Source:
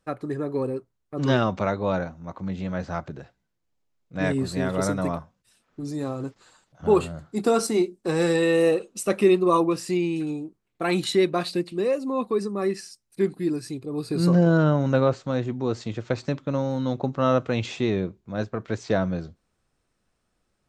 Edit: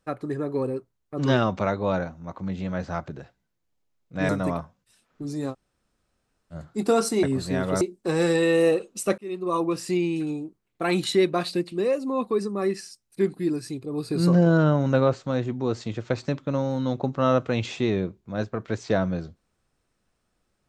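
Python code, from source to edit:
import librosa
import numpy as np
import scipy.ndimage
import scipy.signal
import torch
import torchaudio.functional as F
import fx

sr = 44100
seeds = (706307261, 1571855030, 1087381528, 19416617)

y = fx.edit(x, sr, fx.move(start_s=4.29, length_s=0.58, to_s=7.81),
    fx.room_tone_fill(start_s=6.1, length_s=1.01, crossfade_s=0.06),
    fx.fade_in_span(start_s=9.18, length_s=0.67), tone=tone)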